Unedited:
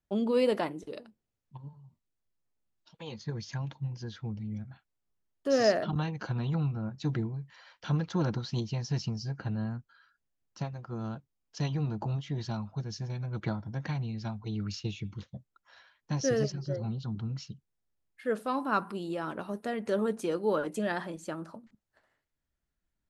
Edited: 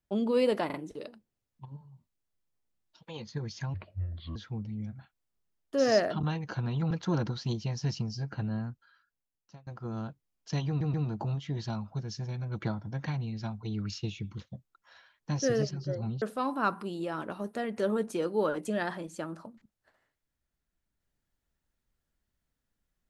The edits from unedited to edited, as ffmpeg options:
ffmpeg -i in.wav -filter_complex "[0:a]asplit=10[link_01][link_02][link_03][link_04][link_05][link_06][link_07][link_08][link_09][link_10];[link_01]atrim=end=0.702[link_11];[link_02]atrim=start=0.658:end=0.702[link_12];[link_03]atrim=start=0.658:end=3.664[link_13];[link_04]atrim=start=3.66:end=4.08,asetpts=PTS-STARTPTS,asetrate=29988,aresample=44100,atrim=end_sample=27238,asetpts=PTS-STARTPTS[link_14];[link_05]atrim=start=4.076:end=6.632[link_15];[link_06]atrim=start=7.978:end=10.74,asetpts=PTS-STARTPTS,afade=type=out:start_time=1.732:duration=1.03:silence=0.0630957[link_16];[link_07]atrim=start=10.74:end=11.882,asetpts=PTS-STARTPTS,afade=type=in:duration=0.004:curve=hsin:silence=0.0630957[link_17];[link_08]atrim=start=11.748:end=11.882[link_18];[link_09]atrim=start=11.748:end=17.032[link_19];[link_10]atrim=start=18.308[link_20];[link_11][link_12]acrossfade=duration=0.004:curve1=hsin:curve2=hsin[link_21];[link_21][link_13]acrossfade=duration=0.004:curve1=hsin:curve2=hsin[link_22];[link_22][link_14]acrossfade=duration=0.004:curve1=hsin:curve2=hsin[link_23];[link_23][link_15]acrossfade=duration=0.004:curve1=hsin:curve2=hsin[link_24];[link_16][link_17]concat=n=2:v=0:a=1[link_25];[link_24][link_25]acrossfade=duration=0.004:curve1=hsin:curve2=hsin[link_26];[link_26][link_18]acrossfade=duration=0.004:curve1=hsin:curve2=hsin[link_27];[link_27][link_19]acrossfade=duration=0.004:curve1=hsin:curve2=hsin[link_28];[link_28][link_20]acrossfade=duration=0.004:curve1=hsin:curve2=hsin" out.wav

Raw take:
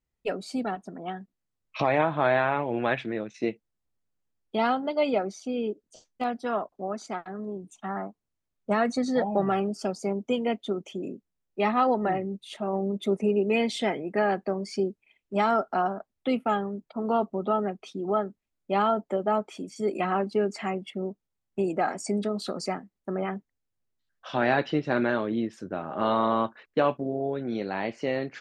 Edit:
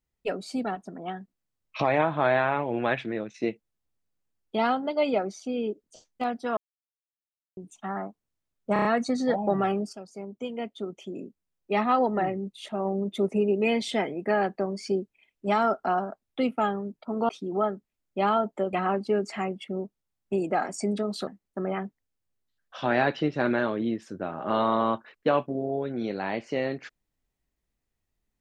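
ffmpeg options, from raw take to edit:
ffmpeg -i in.wav -filter_complex "[0:a]asplit=11[link_01][link_02][link_03][link_04][link_05][link_06][link_07][link_08][link_09][link_10][link_11];[link_01]atrim=end=6.57,asetpts=PTS-STARTPTS,afade=type=out:start_time=6.566:duration=0.004:curve=hsin[link_12];[link_02]atrim=start=6.57:end=7.57,asetpts=PTS-STARTPTS,volume=0[link_13];[link_03]atrim=start=7.57:end=8.762,asetpts=PTS-STARTPTS,afade=type=in:duration=0.004:curve=hsin[link_14];[link_04]atrim=start=8.728:end=8.762[link_15];[link_05]atrim=start=8.728:end=8.762[link_16];[link_06]atrim=start=8.728:end=8.762[link_17];[link_07]atrim=start=8.728:end=9.81,asetpts=PTS-STARTPTS,afade=type=out:start_time=1.078:duration=0.004:curve=hsin:silence=0.199526[link_18];[link_08]atrim=start=9.81:end=17.172,asetpts=PTS-STARTPTS,afade=type=in:duration=1.88:silence=0.199526[link_19];[link_09]atrim=start=17.818:end=19.262[link_20];[link_10]atrim=start=19.988:end=22.532[link_21];[link_11]atrim=start=22.778[link_22];[link_12][link_13][link_14]concat=n=3:v=0:a=1[link_23];[link_23][link_15]acrossfade=duration=0.004:curve1=hsin:curve2=hsin[link_24];[link_24][link_16]acrossfade=duration=0.004:curve1=hsin:curve2=hsin[link_25];[link_25][link_17]acrossfade=duration=0.004:curve1=hsin:curve2=hsin[link_26];[link_18][link_19]concat=n=2:v=0:a=1[link_27];[link_26][link_27]acrossfade=duration=0.004:curve1=hsin:curve2=hsin[link_28];[link_28][link_20]acrossfade=duration=0.004:curve1=hsin:curve2=hsin[link_29];[link_29][link_21]acrossfade=duration=0.004:curve1=hsin:curve2=hsin[link_30];[link_30][link_22]acrossfade=duration=0.004:curve1=hsin:curve2=hsin" out.wav

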